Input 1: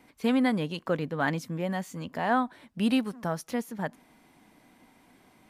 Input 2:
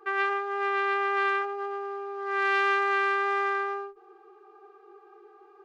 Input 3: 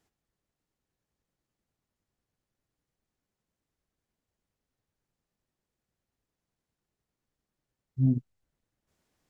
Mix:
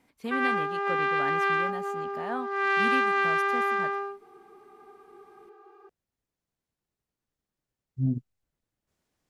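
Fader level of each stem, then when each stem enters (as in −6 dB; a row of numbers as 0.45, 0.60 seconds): −8.5, +0.5, −2.5 decibels; 0.00, 0.25, 0.00 seconds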